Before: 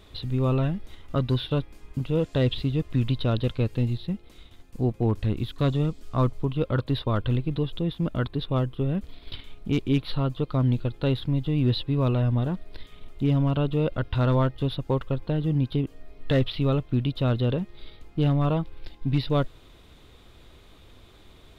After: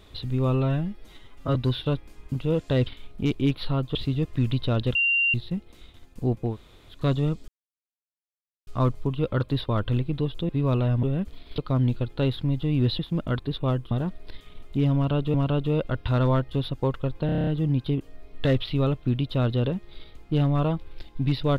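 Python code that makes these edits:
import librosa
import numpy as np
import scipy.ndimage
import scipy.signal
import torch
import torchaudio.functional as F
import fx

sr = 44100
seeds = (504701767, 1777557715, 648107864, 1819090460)

y = fx.edit(x, sr, fx.stretch_span(start_s=0.5, length_s=0.7, factor=1.5),
    fx.bleep(start_s=3.52, length_s=0.39, hz=2770.0, db=-19.0),
    fx.room_tone_fill(start_s=5.07, length_s=0.45, crossfade_s=0.16),
    fx.insert_silence(at_s=6.05, length_s=1.19),
    fx.swap(start_s=7.87, length_s=0.92, other_s=11.83, other_length_s=0.54),
    fx.move(start_s=9.34, length_s=1.08, to_s=2.52),
    fx.repeat(start_s=13.41, length_s=0.39, count=2),
    fx.stutter(start_s=15.33, slice_s=0.03, count=8), tone=tone)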